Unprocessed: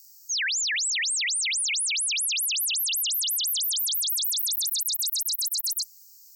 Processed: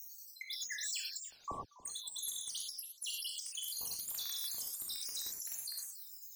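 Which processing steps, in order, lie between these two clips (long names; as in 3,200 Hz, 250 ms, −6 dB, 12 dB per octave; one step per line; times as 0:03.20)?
time-frequency cells dropped at random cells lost 81%
soft clipping −35 dBFS, distortion −7 dB
0:01.21–0:01.83: voice inversion scrambler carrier 3,200 Hz
downward compressor 2.5 to 1, threshold −48 dBFS, peak gain reduction 8 dB
reverb whose tail is shaped and stops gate 140 ms flat, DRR −1.5 dB
feedback echo with a swinging delay time 284 ms, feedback 32%, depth 206 cents, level −19 dB
level +2.5 dB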